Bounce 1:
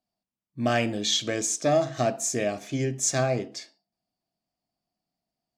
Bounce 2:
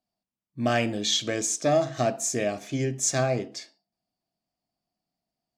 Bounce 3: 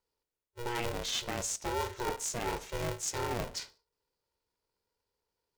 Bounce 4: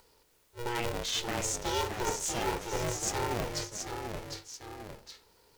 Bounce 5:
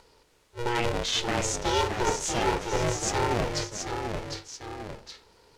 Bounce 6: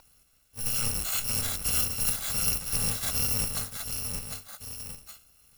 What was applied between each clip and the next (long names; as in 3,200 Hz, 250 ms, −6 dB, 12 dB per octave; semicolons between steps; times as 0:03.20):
no processing that can be heard
reversed playback; downward compressor, threshold −32 dBFS, peak gain reduction 13.5 dB; reversed playback; ring modulator with a square carrier 240 Hz
upward compression, threshold −49 dBFS; delay with pitch and tempo change per echo 543 ms, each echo −1 semitone, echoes 2, each echo −6 dB; level +1.5 dB
high-frequency loss of the air 52 metres; level +6.5 dB
samples in bit-reversed order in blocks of 128 samples; every ending faded ahead of time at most 280 dB per second; level −1.5 dB